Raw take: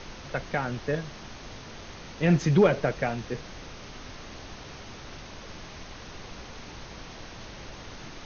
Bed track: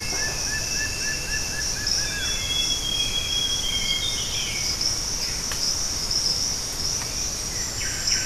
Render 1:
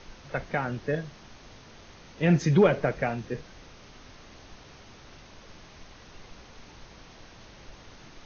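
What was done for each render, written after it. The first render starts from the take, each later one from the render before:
noise reduction from a noise print 7 dB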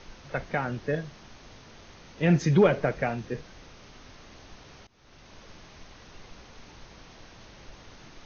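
0:04.87–0:05.35: fade in linear, from −24 dB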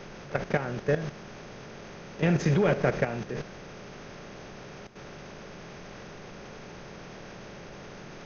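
compressor on every frequency bin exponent 0.6
output level in coarse steps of 11 dB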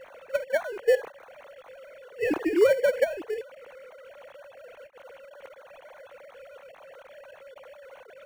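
three sine waves on the formant tracks
in parallel at −11.5 dB: sample-rate reduction 2,500 Hz, jitter 0%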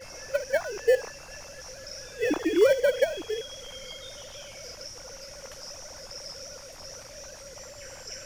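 mix in bed track −18.5 dB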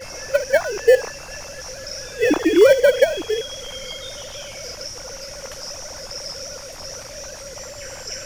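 level +9 dB
brickwall limiter −3 dBFS, peak gain reduction 2 dB

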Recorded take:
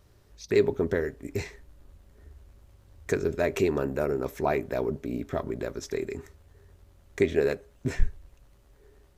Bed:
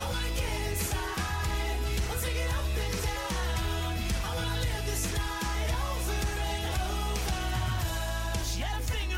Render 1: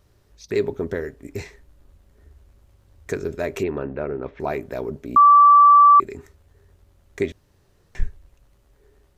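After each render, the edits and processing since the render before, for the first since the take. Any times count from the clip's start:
0:03.63–0:04.40: low-pass filter 3,200 Hz 24 dB per octave
0:05.16–0:06.00: beep over 1,160 Hz −7.5 dBFS
0:07.32–0:07.95: fill with room tone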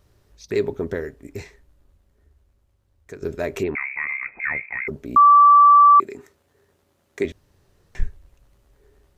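0:00.93–0:03.22: fade out quadratic, to −11.5 dB
0:03.75–0:04.88: voice inversion scrambler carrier 2,500 Hz
0:05.79–0:07.25: high-pass filter 190 Hz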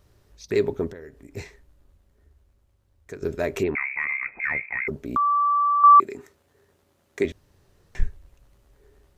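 0:00.91–0:01.37: downward compressor 2.5 to 1, threshold −43 dBFS
0:03.88–0:05.84: downward compressor, threshold −20 dBFS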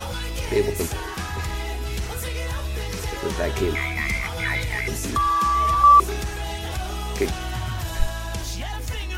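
mix in bed +2 dB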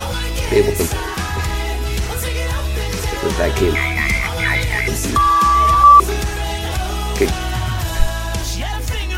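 level +7.5 dB
brickwall limiter −1 dBFS, peak gain reduction 2.5 dB

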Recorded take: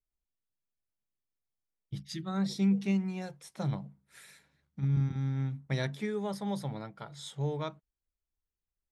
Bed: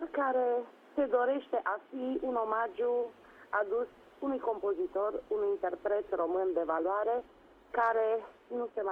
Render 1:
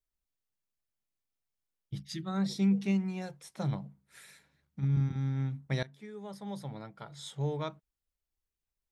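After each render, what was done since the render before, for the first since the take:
0:05.83–0:07.32: fade in, from −20 dB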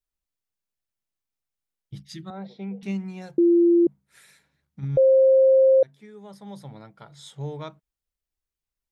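0:02.30–0:02.83: loudspeaker in its box 280–2,900 Hz, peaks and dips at 310 Hz −9 dB, 500 Hz +6 dB, 730 Hz +5 dB, 1,200 Hz −9 dB, 1,800 Hz −8 dB, 2,700 Hz −4 dB
0:03.38–0:03.87: beep over 343 Hz −13.5 dBFS
0:04.97–0:05.83: beep over 530 Hz −12.5 dBFS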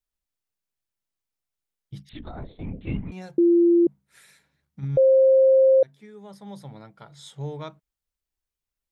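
0:02.09–0:03.12: linear-prediction vocoder at 8 kHz whisper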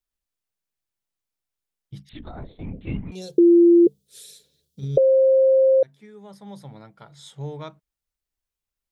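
0:03.15–0:04.98: drawn EQ curve 310 Hz 0 dB, 440 Hz +14 dB, 840 Hz −12 dB, 2,100 Hz −11 dB, 3,400 Hz +13 dB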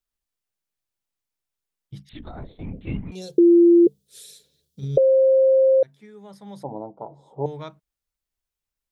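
0:06.63–0:07.46: drawn EQ curve 170 Hz 0 dB, 300 Hz +14 dB, 950 Hz +14 dB, 1,500 Hz −25 dB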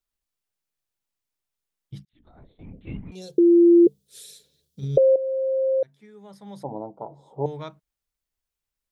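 0:02.05–0:03.81: fade in
0:05.16–0:06.71: fade in, from −12.5 dB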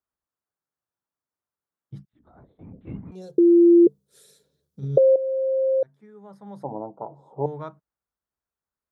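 high-pass filter 77 Hz
high shelf with overshoot 1,900 Hz −10.5 dB, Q 1.5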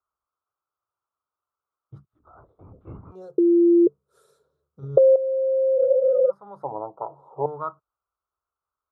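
0:05.80–0:06.28: healed spectral selection 440–1,200 Hz before
drawn EQ curve 100 Hz 0 dB, 220 Hz −13 dB, 380 Hz 0 dB, 840 Hz +3 dB, 1,300 Hz +13 dB, 1,800 Hz −13 dB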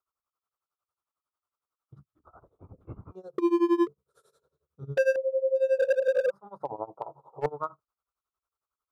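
hard clipping −18 dBFS, distortion −10 dB
amplitude tremolo 11 Hz, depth 91%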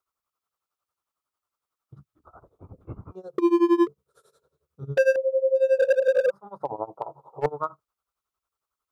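level +4 dB

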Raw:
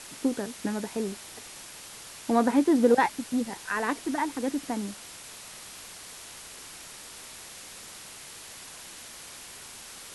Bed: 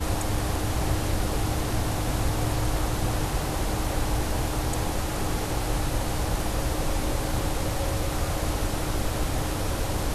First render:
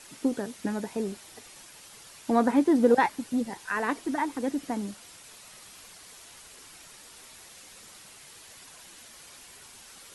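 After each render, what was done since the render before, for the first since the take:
broadband denoise 7 dB, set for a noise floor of −45 dBFS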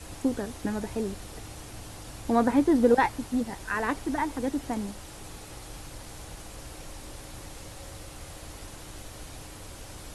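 mix in bed −17 dB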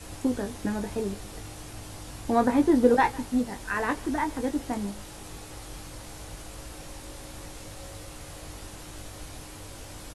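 double-tracking delay 20 ms −7 dB
single-tap delay 153 ms −22 dB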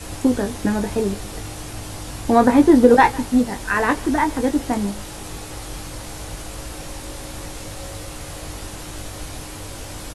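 level +9 dB
brickwall limiter −1 dBFS, peak gain reduction 2.5 dB

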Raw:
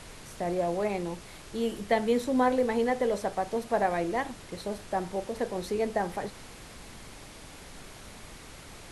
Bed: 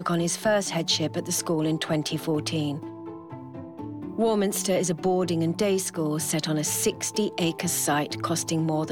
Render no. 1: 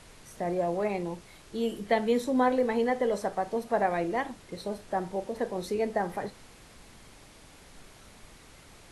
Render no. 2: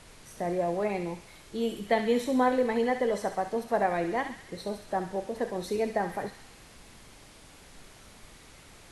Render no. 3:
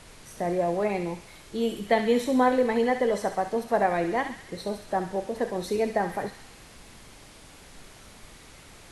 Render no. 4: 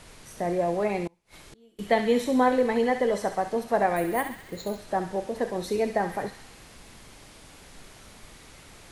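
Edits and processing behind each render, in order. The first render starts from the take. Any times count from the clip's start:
noise reduction from a noise print 6 dB
delay with a high-pass on its return 67 ms, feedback 61%, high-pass 1,600 Hz, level −6.5 dB
level +3 dB
0:01.07–0:01.79: gate with flip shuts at −36 dBFS, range −30 dB; 0:03.96–0:04.79: bad sample-rate conversion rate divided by 4×, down filtered, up hold

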